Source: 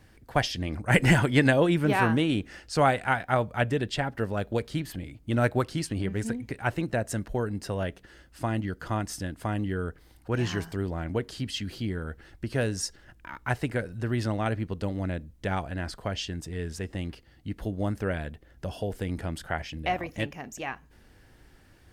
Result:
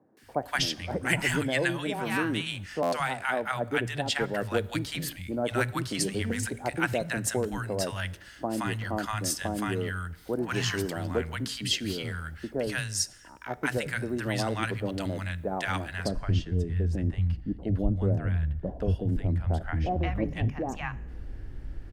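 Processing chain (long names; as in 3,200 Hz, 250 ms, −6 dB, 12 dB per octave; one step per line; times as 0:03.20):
spectral tilt +1.5 dB per octave, from 0:15.90 −3.5 dB per octave
speech leveller within 4 dB 0.5 s
three-band delay without the direct sound mids, highs, lows 170/230 ms, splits 160/880 Hz
dense smooth reverb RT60 1.1 s, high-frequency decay 0.9×, DRR 19.5 dB
buffer that repeats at 0:02.82, samples 512, times 8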